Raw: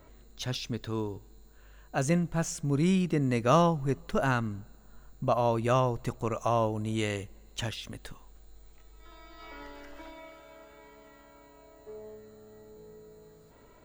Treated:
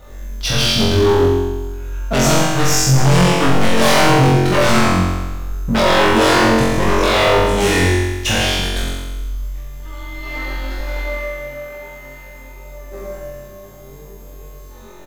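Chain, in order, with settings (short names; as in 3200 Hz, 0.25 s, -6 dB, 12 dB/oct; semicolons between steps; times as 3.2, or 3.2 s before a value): G.711 law mismatch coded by A; outdoor echo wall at 17 m, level -7 dB; in parallel at -7.5 dB: sine folder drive 19 dB, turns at -10.5 dBFS; on the sum: de-hum 113.4 Hz, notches 36; flange 0.6 Hz, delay 1.2 ms, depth 8.6 ms, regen +31%; speed mistake 48 kHz file played as 44.1 kHz; on a send: flutter echo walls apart 3.8 m, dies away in 1.2 s; on the sum: hard clip -13 dBFS, distortion -15 dB; gain +6 dB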